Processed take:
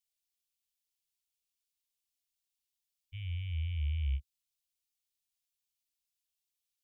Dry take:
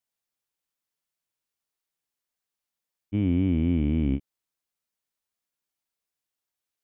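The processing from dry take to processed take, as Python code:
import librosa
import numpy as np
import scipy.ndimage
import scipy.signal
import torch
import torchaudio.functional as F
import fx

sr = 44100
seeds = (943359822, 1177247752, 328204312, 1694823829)

y = scipy.signal.sosfilt(scipy.signal.cheby2(4, 70, [240.0, 790.0], 'bandstop', fs=sr, output='sos'), x)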